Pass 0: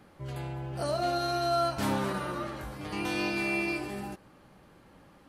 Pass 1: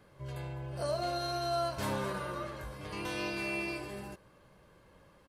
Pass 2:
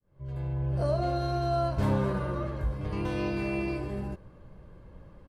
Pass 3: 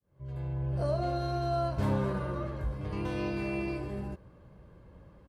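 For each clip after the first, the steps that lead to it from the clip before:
comb 1.9 ms, depth 45%; pre-echo 91 ms -21 dB; trim -4.5 dB
fade-in on the opening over 0.71 s; tilt EQ -3.5 dB/octave; trim +2 dB
high-pass 43 Hz; trim -2.5 dB

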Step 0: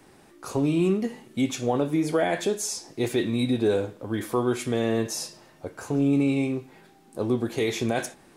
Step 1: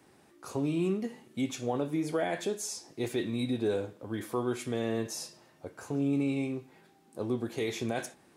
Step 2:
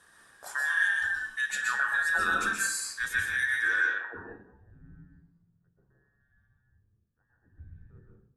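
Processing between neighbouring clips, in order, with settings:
high-pass 57 Hz; trim -7 dB
every band turned upside down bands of 2 kHz; low-pass sweep 10 kHz -> 120 Hz, 3.61–4.43 s; reverberation RT60 0.55 s, pre-delay 119 ms, DRR -0.5 dB

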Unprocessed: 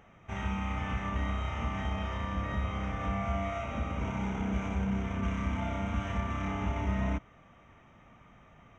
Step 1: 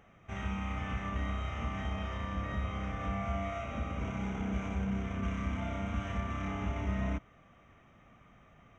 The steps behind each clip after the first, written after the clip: band-stop 910 Hz, Q 9.9; trim -2.5 dB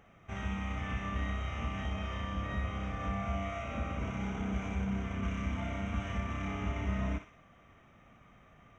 thinning echo 61 ms, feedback 50%, high-pass 770 Hz, level -7 dB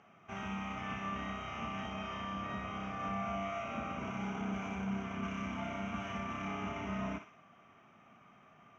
cabinet simulation 210–6000 Hz, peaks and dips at 300 Hz -5 dB, 510 Hz -9 dB, 1.9 kHz -7 dB, 3.7 kHz -8 dB; trim +2.5 dB

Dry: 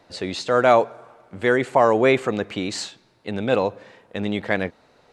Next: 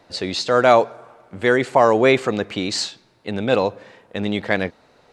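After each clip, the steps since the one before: dynamic bell 4.8 kHz, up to +6 dB, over -44 dBFS, Q 1.6; trim +2 dB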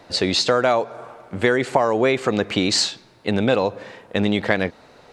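compression 10:1, threshold -20 dBFS, peak gain reduction 12.5 dB; trim +6 dB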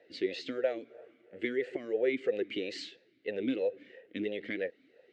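talking filter e-i 3 Hz; trim -3.5 dB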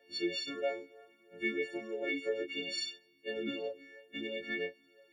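partials quantised in pitch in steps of 4 st; chorus 0.64 Hz, depth 2.4 ms; trim -1.5 dB

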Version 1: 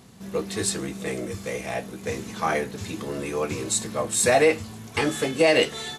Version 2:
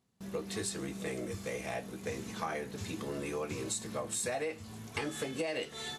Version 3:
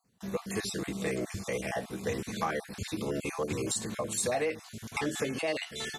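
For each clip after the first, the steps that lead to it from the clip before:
gate with hold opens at -38 dBFS; compression 6:1, threshold -27 dBFS, peak gain reduction 13 dB; trim -6 dB
random holes in the spectrogram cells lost 27%; in parallel at -8.5 dB: hard clipper -31 dBFS, distortion -18 dB; on the sum: trim +3 dB

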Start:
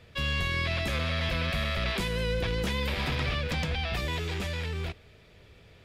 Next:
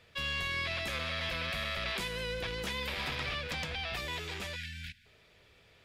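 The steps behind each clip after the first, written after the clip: spectral selection erased 4.56–5.06 s, 260–1400 Hz; bass shelf 450 Hz -10 dB; trim -2.5 dB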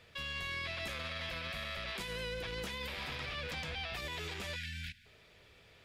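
peak limiter -33 dBFS, peak gain reduction 9.5 dB; trim +1 dB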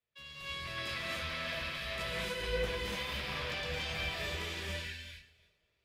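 backward echo that repeats 173 ms, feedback 43%, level -10 dB; gated-style reverb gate 320 ms rising, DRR -5 dB; three bands expanded up and down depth 100%; trim -3.5 dB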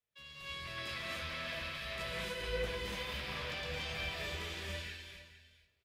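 delay 457 ms -14.5 dB; trim -3 dB

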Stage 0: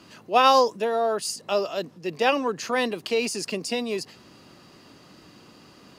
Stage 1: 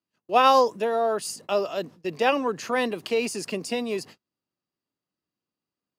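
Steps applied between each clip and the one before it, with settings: gate -42 dBFS, range -40 dB; dynamic bell 4.9 kHz, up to -5 dB, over -42 dBFS, Q 1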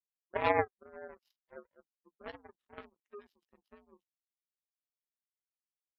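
frequency axis rescaled in octaves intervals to 83%; spectral gate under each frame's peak -15 dB strong; power-law waveshaper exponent 3; trim -3 dB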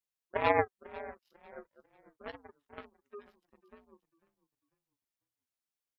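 frequency-shifting echo 496 ms, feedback 32%, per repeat -39 Hz, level -19 dB; trim +1.5 dB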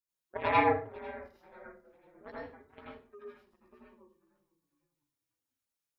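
LFO notch sine 3.6 Hz 440–3000 Hz; reverberation RT60 0.35 s, pre-delay 78 ms, DRR -7 dB; trim -5 dB

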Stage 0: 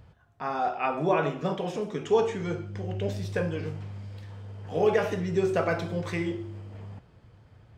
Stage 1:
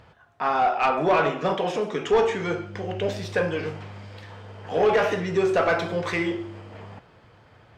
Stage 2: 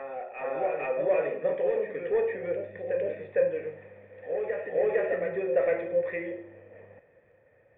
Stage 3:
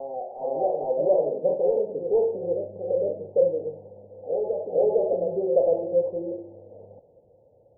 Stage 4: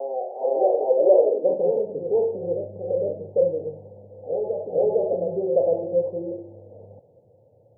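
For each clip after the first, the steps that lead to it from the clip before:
overdrive pedal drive 17 dB, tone 3.1 kHz, clips at -10.5 dBFS
cascade formant filter e; reverse echo 456 ms -5 dB; trim +3.5 dB
steep low-pass 870 Hz 72 dB/octave; trim +4.5 dB
high-pass sweep 410 Hz -> 110 Hz, 1.32–1.82 s

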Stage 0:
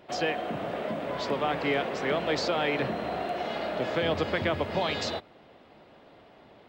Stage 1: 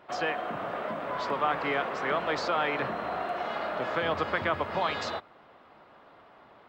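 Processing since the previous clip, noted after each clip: peaking EQ 1.2 kHz +12.5 dB 1.3 oct; trim -6 dB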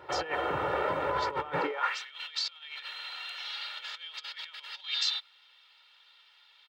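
comb 2.2 ms, depth 85%; compressor with a negative ratio -31 dBFS, ratio -0.5; high-pass sweep 63 Hz -> 3.4 kHz, 1.46–1.98 s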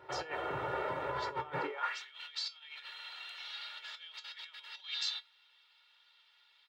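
feedback comb 130 Hz, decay 0.17 s, harmonics odd, mix 70%; trim +1 dB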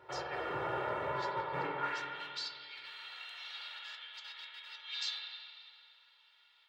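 spring tank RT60 2.2 s, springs 45/51 ms, chirp 45 ms, DRR 0 dB; trim -2.5 dB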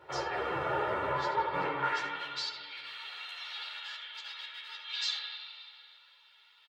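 delay 73 ms -13 dB; three-phase chorus; trim +7.5 dB

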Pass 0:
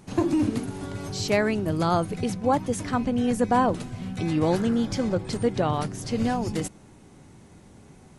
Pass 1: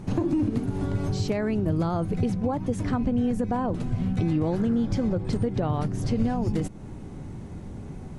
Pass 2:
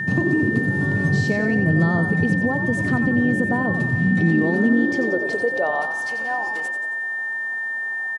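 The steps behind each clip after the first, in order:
peak limiter -16 dBFS, peak gain reduction 6.5 dB; compression 2.5:1, threshold -37 dBFS, peak gain reduction 11 dB; tilt EQ -2.5 dB/octave; trim +5.5 dB
frequency-shifting echo 90 ms, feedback 52%, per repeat +52 Hz, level -9 dB; high-pass sweep 140 Hz -> 840 Hz, 3.93–6.08 s; whistle 1.8 kHz -25 dBFS; trim +1.5 dB

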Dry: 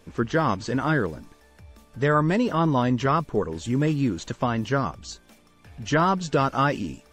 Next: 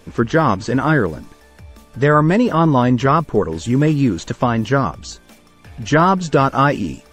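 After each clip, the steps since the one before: dynamic bell 4.4 kHz, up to -4 dB, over -40 dBFS, Q 0.77; trim +8 dB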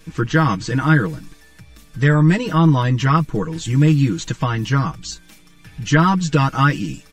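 peaking EQ 590 Hz -12.5 dB 1.7 oct; comb 6.3 ms, depth 88%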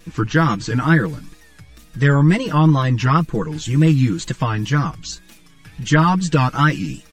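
wow and flutter 110 cents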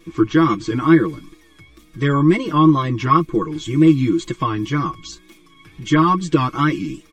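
small resonant body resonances 340/1100/2200/3300 Hz, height 17 dB, ringing for 55 ms; trim -6 dB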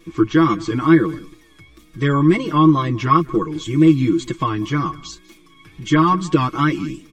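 delay 194 ms -22 dB

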